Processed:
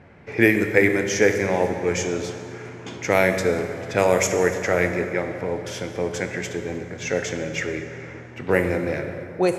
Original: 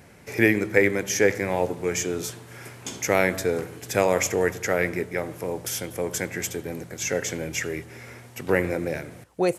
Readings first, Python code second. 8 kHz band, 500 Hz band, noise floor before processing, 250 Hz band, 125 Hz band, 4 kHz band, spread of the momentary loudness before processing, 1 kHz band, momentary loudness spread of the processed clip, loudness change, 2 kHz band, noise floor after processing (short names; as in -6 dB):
-2.0 dB, +3.0 dB, -48 dBFS, +3.0 dB, +3.5 dB, +1.0 dB, 14 LU, +3.0 dB, 14 LU, +2.5 dB, +3.0 dB, -39 dBFS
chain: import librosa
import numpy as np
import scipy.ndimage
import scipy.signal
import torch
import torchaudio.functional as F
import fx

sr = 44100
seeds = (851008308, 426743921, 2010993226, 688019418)

y = fx.env_lowpass(x, sr, base_hz=2200.0, full_db=-16.0)
y = fx.rev_plate(y, sr, seeds[0], rt60_s=3.0, hf_ratio=0.6, predelay_ms=0, drr_db=6.0)
y = F.gain(torch.from_numpy(y), 2.0).numpy()